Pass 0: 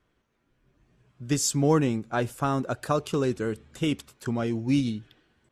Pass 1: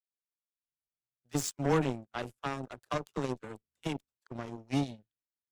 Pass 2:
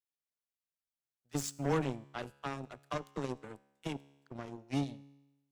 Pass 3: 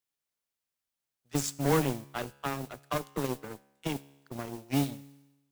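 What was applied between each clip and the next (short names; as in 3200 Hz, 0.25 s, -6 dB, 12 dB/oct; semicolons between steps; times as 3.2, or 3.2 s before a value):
dispersion lows, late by 48 ms, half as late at 450 Hz; added harmonics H 7 -17 dB, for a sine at -10 dBFS; gain -6 dB
resonator 70 Hz, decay 1 s, harmonics all, mix 40%
modulation noise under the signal 14 dB; gain +5.5 dB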